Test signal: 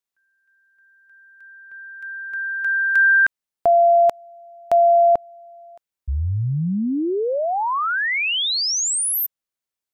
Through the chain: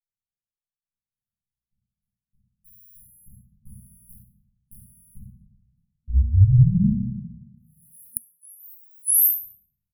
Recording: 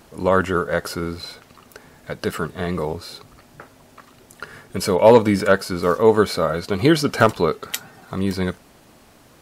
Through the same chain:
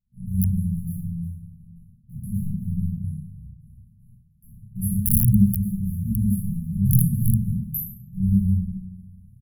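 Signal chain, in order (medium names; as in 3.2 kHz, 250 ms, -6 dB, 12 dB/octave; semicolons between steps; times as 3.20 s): local Wiener filter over 15 samples; reverse; upward compressor, threshold -40 dBFS; reverse; treble shelf 3.5 kHz +10 dB; AM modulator 160 Hz, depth 25%; peaking EQ 2.1 kHz +8 dB 0.27 oct; gate -47 dBFS, range -24 dB; on a send: early reflections 31 ms -5 dB, 65 ms -11 dB; on the sum: simulated room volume 170 m³, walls mixed, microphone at 3.4 m; integer overflow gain -6 dB; FFT band-reject 230–10000 Hz; trim -8.5 dB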